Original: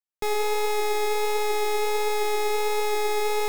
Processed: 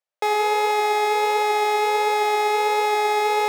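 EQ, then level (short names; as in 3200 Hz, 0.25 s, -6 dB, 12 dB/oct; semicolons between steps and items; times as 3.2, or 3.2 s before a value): resonant high-pass 570 Hz, resonance Q 5.7; LPF 2300 Hz 6 dB/oct; tilt shelf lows -5 dB, about 880 Hz; +4.5 dB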